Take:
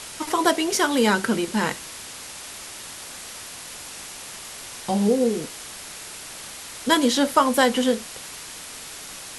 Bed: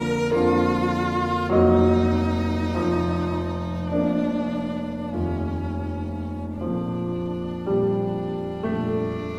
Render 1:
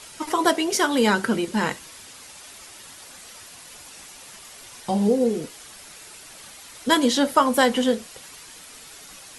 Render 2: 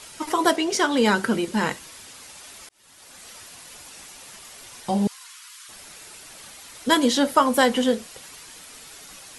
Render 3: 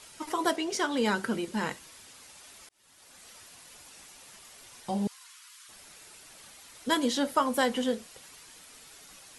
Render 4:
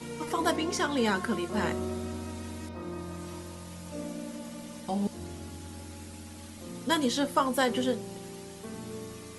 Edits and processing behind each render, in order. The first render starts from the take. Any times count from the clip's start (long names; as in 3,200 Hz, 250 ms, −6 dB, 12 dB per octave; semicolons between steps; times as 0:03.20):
broadband denoise 8 dB, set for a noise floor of −38 dBFS
0:00.56–0:01.06: low-pass filter 7,900 Hz; 0:02.69–0:03.28: fade in; 0:05.07–0:05.69: Chebyshev high-pass filter 1,000 Hz, order 6
level −8 dB
mix in bed −16 dB